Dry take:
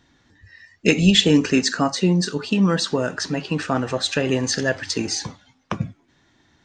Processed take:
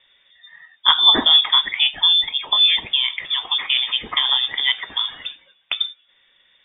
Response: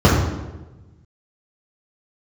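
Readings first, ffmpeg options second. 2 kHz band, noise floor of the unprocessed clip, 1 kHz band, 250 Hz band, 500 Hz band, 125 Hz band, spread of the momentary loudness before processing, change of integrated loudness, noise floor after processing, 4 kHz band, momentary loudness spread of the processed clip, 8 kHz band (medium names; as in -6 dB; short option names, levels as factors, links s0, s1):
+1.0 dB, -62 dBFS, +3.0 dB, -17.5 dB, -15.5 dB, under -25 dB, 14 LU, +4.5 dB, -60 dBFS, +11.5 dB, 12 LU, under -40 dB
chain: -af "aeval=exprs='0.841*(cos(1*acos(clip(val(0)/0.841,-1,1)))-cos(1*PI/2))+0.0531*(cos(2*acos(clip(val(0)/0.841,-1,1)))-cos(2*PI/2))':c=same,lowpass=f=3100:t=q:w=0.5098,lowpass=f=3100:t=q:w=0.6013,lowpass=f=3100:t=q:w=0.9,lowpass=f=3100:t=q:w=2.563,afreqshift=-3700,volume=1.26"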